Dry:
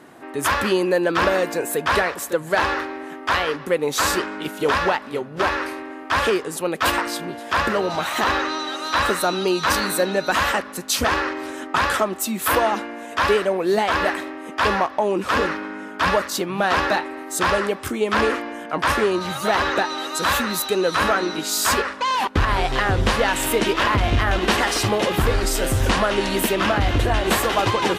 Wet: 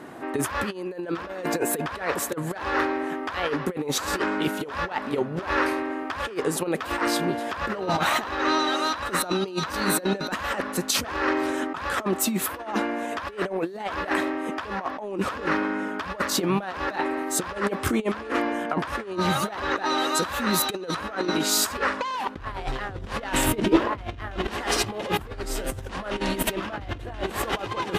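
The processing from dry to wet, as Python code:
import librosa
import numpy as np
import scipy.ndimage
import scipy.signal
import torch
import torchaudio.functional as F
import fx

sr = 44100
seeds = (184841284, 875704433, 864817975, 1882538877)

y = fx.high_shelf(x, sr, hz=2300.0, db=-5.5)
y = fx.over_compress(y, sr, threshold_db=-26.0, ratio=-0.5)
y = fx.peak_eq(y, sr, hz=fx.line((23.46, 78.0), (23.93, 540.0)), db=14.0, octaves=2.2, at=(23.46, 23.93), fade=0.02)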